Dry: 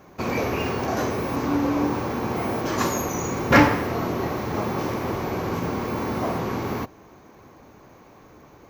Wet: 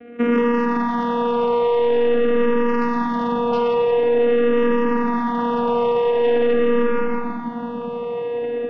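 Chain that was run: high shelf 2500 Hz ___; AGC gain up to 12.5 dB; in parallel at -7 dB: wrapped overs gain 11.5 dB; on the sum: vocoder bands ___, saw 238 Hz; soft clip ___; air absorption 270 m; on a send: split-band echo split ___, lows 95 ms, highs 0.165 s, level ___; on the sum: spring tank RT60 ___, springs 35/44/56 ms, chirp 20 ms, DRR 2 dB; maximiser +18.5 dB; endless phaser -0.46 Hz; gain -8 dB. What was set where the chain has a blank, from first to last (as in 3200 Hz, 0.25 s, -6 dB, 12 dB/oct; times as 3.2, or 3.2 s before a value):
-3 dB, 4, -18.5 dBFS, 330 Hz, -8 dB, 2.3 s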